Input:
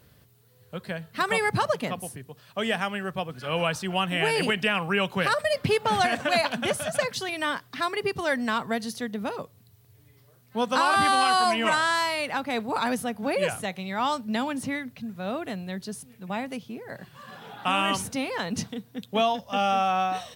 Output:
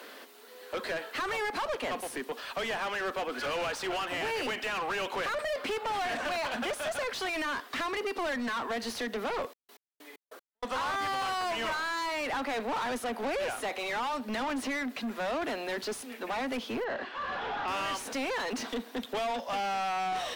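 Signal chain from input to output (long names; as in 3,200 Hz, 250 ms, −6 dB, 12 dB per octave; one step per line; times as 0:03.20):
Butterworth high-pass 230 Hz 72 dB per octave
downward compressor 4 to 1, threshold −34 dBFS, peak gain reduction 13.5 dB
mid-hump overdrive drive 31 dB, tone 2,400 Hz, clips at −19.5 dBFS
0:09.40–0:10.64: gate pattern "xx..x..." 192 BPM −60 dB
0:16.84–0:17.68: high-frequency loss of the air 170 metres
level −5 dB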